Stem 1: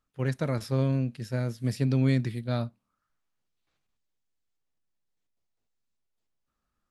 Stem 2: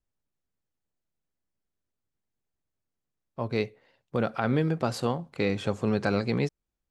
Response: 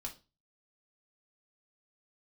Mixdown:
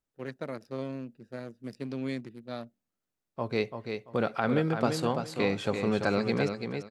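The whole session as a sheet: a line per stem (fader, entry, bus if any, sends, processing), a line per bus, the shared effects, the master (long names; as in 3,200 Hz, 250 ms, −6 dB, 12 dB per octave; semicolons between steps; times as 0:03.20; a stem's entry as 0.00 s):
−4.0 dB, 0.00 s, no send, no echo send, adaptive Wiener filter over 41 samples; high-pass filter 220 Hz 12 dB per octave
0.0 dB, 0.00 s, no send, echo send −6.5 dB, no processing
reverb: not used
echo: repeating echo 338 ms, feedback 23%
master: low-shelf EQ 120 Hz −9.5 dB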